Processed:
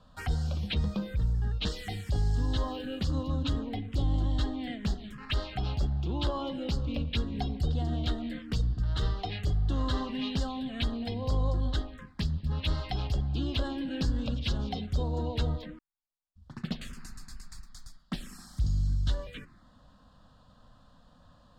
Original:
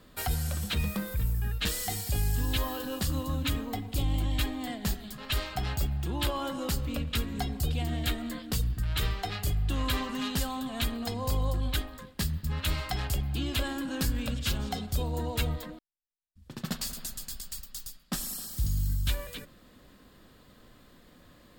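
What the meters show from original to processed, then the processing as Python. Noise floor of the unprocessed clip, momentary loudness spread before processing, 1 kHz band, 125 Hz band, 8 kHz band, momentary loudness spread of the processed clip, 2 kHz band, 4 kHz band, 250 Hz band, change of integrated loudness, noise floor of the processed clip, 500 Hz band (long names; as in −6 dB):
−57 dBFS, 6 LU, −2.5 dB, +1.0 dB, −14.5 dB, 10 LU, −5.5 dB, −3.5 dB, +0.5 dB, −0.5 dB, −60 dBFS, 0.0 dB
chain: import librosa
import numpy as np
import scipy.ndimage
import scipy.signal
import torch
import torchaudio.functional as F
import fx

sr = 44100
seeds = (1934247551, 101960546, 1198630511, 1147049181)

y = scipy.signal.sosfilt(scipy.signal.butter(2, 4300.0, 'lowpass', fs=sr, output='sos'), x)
y = fx.env_phaser(y, sr, low_hz=340.0, high_hz=2400.0, full_db=-26.5)
y = F.gain(torch.from_numpy(y), 1.0).numpy()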